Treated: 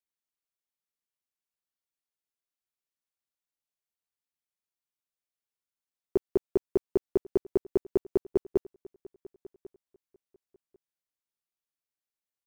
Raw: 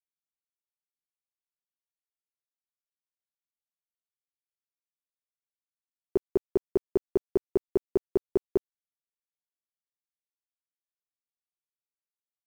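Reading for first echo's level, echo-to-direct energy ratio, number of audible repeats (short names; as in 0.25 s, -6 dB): -21.0 dB, -21.0 dB, 1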